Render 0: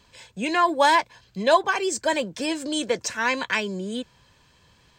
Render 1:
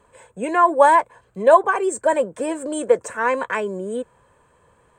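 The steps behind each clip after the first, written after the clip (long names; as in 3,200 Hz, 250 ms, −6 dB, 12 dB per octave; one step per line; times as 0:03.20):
drawn EQ curve 180 Hz 0 dB, 330 Hz +3 dB, 470 Hz +12 dB, 760 Hz +6 dB, 1,200 Hz +8 dB, 5,200 Hz −19 dB, 8,500 Hz +7 dB, 12,000 Hz −5 dB
level −2 dB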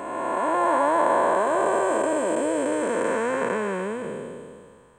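spectrum smeared in time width 886 ms
level +5.5 dB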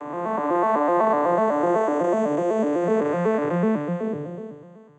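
vocoder with an arpeggio as carrier minor triad, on D3, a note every 125 ms
level +2.5 dB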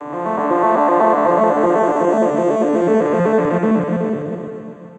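delay that plays each chunk backwards 128 ms, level −2.5 dB
single-tap delay 926 ms −19.5 dB
level +4.5 dB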